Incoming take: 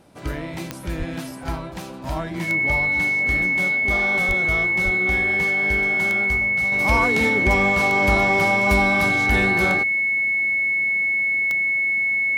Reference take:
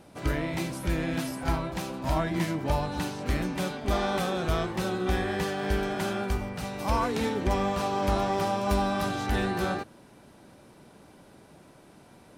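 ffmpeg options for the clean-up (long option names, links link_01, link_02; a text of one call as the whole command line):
ffmpeg -i in.wav -filter_complex "[0:a]adeclick=threshold=4,bandreject=frequency=2200:width=30,asplit=3[link_01][link_02][link_03];[link_01]afade=type=out:start_time=0.98:duration=0.02[link_04];[link_02]highpass=frequency=140:width=0.5412,highpass=frequency=140:width=1.3066,afade=type=in:start_time=0.98:duration=0.02,afade=type=out:start_time=1.1:duration=0.02[link_05];[link_03]afade=type=in:start_time=1.1:duration=0.02[link_06];[link_04][link_05][link_06]amix=inputs=3:normalize=0,asplit=3[link_07][link_08][link_09];[link_07]afade=type=out:start_time=4.27:duration=0.02[link_10];[link_08]highpass=frequency=140:width=0.5412,highpass=frequency=140:width=1.3066,afade=type=in:start_time=4.27:duration=0.02,afade=type=out:start_time=4.39:duration=0.02[link_11];[link_09]afade=type=in:start_time=4.39:duration=0.02[link_12];[link_10][link_11][link_12]amix=inputs=3:normalize=0,asplit=3[link_13][link_14][link_15];[link_13]afade=type=out:start_time=4.84:duration=0.02[link_16];[link_14]highpass=frequency=140:width=0.5412,highpass=frequency=140:width=1.3066,afade=type=in:start_time=4.84:duration=0.02,afade=type=out:start_time=4.96:duration=0.02[link_17];[link_15]afade=type=in:start_time=4.96:duration=0.02[link_18];[link_16][link_17][link_18]amix=inputs=3:normalize=0,asetnsamples=nb_out_samples=441:pad=0,asendcmd='6.72 volume volume -6dB',volume=0dB" out.wav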